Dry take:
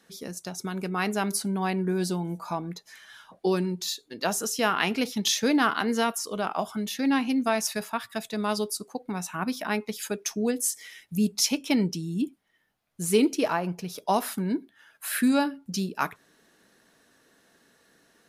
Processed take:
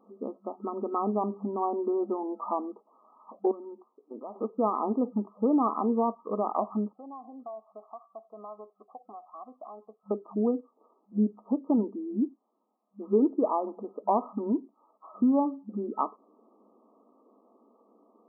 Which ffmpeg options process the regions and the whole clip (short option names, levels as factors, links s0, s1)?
-filter_complex "[0:a]asettb=1/sr,asplit=3[s0][s1][s2];[s0]atrim=end=3.514[s3];[s1]atrim=start=3.51:end=4.36,asetpts=PTS-STARTPTS,afade=t=in:d=0.004:c=qsin,afade=t=out:st=0.846:d=0.004:c=qsin,bass=f=250:g=-7,treble=f=4000:g=-6,acompressor=threshold=0.0141:ratio=12:attack=3.2:release=140:knee=1:detection=peak,aeval=exprs='(tanh(25.1*val(0)+0.05)-tanh(0.05))/25.1':c=same[s4];[s2]atrim=start=4.356[s5];[s3][s4]acrossfade=d=0.004:c1=hsin:c2=qsin[s6];[s6][s5]acrossfade=d=0.004:c1=qsin:c2=hsin,asettb=1/sr,asplit=3[s7][s8][s9];[s7]atrim=end=6.934[s10];[s8]atrim=start=6.93:end=10.11,asetpts=PTS-STARTPTS,afade=t=in:d=0.004:c=qsin,afade=t=out:st=3.176:d=0.004:c=qsin,asplit=3[s11][s12][s13];[s11]bandpass=f=730:t=q:w=8,volume=1[s14];[s12]bandpass=f=1090:t=q:w=8,volume=0.501[s15];[s13]bandpass=f=2440:t=q:w=8,volume=0.355[s16];[s14][s15][s16]amix=inputs=3:normalize=0,acompressor=threshold=0.00562:ratio=3:attack=3.2:release=140:knee=1:detection=peak[s17];[s9]atrim=start=10.106[s18];[s10][s17]acrossfade=d=0.004:c1=hsin:c2=qsin[s19];[s19][s18]acrossfade=d=0.004:c1=qsin:c2=hsin,afftfilt=real='re*between(b*sr/4096,200,1300)':imag='im*between(b*sr/4096,200,1300)':win_size=4096:overlap=0.75,acompressor=threshold=0.0224:ratio=1.5,volume=1.58"